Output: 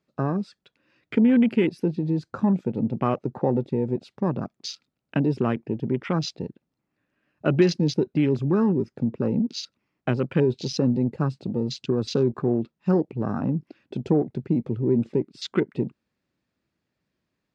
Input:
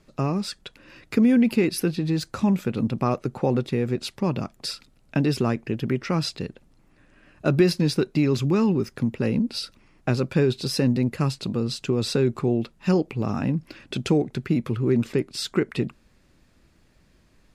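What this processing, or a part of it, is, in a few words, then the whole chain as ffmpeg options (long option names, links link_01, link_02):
over-cleaned archive recording: -af "highpass=110,lowpass=6000,afwtdn=0.02"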